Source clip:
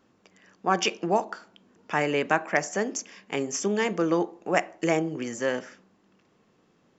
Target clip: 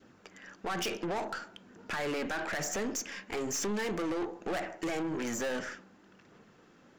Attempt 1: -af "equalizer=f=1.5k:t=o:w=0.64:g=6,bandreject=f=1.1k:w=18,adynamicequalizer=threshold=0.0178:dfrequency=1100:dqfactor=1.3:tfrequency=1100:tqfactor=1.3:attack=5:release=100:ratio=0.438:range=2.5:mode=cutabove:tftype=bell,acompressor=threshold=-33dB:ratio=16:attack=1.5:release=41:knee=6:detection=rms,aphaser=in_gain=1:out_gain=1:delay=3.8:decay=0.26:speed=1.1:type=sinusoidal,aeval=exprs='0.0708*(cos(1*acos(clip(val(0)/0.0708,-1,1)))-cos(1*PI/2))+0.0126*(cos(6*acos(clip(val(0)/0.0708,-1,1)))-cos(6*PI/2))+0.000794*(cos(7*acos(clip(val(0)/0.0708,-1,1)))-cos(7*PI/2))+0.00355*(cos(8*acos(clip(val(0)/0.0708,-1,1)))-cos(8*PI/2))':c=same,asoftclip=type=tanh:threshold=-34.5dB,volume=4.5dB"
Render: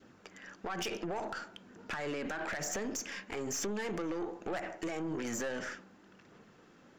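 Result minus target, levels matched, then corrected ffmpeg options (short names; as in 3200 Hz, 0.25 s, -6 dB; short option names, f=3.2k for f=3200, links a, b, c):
compressor: peak gain reduction +8.5 dB
-af "equalizer=f=1.5k:t=o:w=0.64:g=6,bandreject=f=1.1k:w=18,adynamicequalizer=threshold=0.0178:dfrequency=1100:dqfactor=1.3:tfrequency=1100:tqfactor=1.3:attack=5:release=100:ratio=0.438:range=2.5:mode=cutabove:tftype=bell,acompressor=threshold=-24dB:ratio=16:attack=1.5:release=41:knee=6:detection=rms,aphaser=in_gain=1:out_gain=1:delay=3.8:decay=0.26:speed=1.1:type=sinusoidal,aeval=exprs='0.0708*(cos(1*acos(clip(val(0)/0.0708,-1,1)))-cos(1*PI/2))+0.0126*(cos(6*acos(clip(val(0)/0.0708,-1,1)))-cos(6*PI/2))+0.000794*(cos(7*acos(clip(val(0)/0.0708,-1,1)))-cos(7*PI/2))+0.00355*(cos(8*acos(clip(val(0)/0.0708,-1,1)))-cos(8*PI/2))':c=same,asoftclip=type=tanh:threshold=-34.5dB,volume=4.5dB"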